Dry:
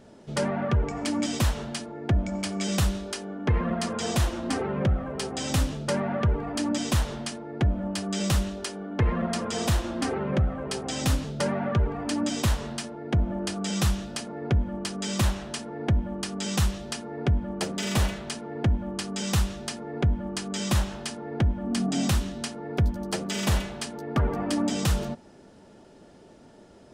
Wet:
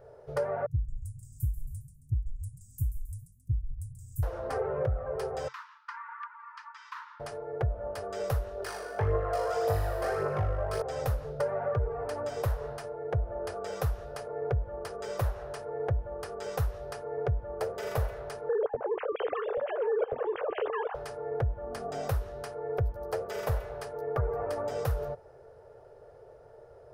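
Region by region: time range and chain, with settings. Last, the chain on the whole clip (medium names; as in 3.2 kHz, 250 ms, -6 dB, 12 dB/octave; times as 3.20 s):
0.66–4.23 s: Chebyshev band-stop 130–7600 Hz, order 4 + frequency-shifting echo 135 ms, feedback 42%, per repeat -77 Hz, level -8.5 dB
5.48–7.20 s: Chebyshev high-pass 910 Hz, order 10 + distance through air 190 m
8.60–10.82 s: high-pass 180 Hz 6 dB/octave + flutter echo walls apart 3.4 m, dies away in 0.92 s + phaser 1.8 Hz, delay 2.2 ms, feedback 45%
18.49–20.95 s: formants replaced by sine waves + compression 1.5:1, threshold -28 dBFS + delay 831 ms -10.5 dB
whole clip: FFT filter 130 Hz 0 dB, 190 Hz -25 dB, 300 Hz -21 dB, 450 Hz +7 dB, 950 Hz -3 dB, 1.4 kHz -2 dB, 3.2 kHz -18 dB, 5.1 kHz -14 dB, 7.7 kHz -19 dB, 13 kHz -2 dB; compression 2.5:1, threshold -28 dBFS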